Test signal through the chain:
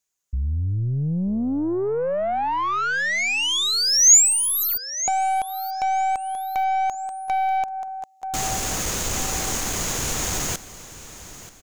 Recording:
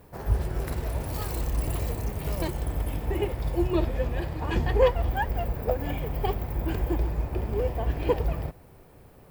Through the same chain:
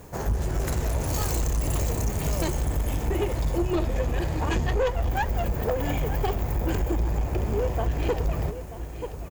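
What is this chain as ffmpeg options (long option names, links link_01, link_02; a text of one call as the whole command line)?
ffmpeg -i in.wav -af "aecho=1:1:933|1866|2799:0.141|0.0551|0.0215,acompressor=threshold=-27dB:ratio=2.5,aeval=exprs='(tanh(20*val(0)+0.2)-tanh(0.2))/20':channel_layout=same,equalizer=frequency=6700:width_type=o:width=0.39:gain=14,volume=7.5dB" out.wav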